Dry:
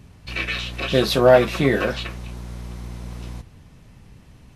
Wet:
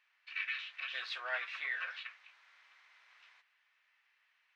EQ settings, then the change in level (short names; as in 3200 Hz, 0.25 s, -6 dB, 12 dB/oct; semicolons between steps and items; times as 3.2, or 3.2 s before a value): ladder high-pass 1500 Hz, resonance 35%; tape spacing loss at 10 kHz 34 dB; +1.0 dB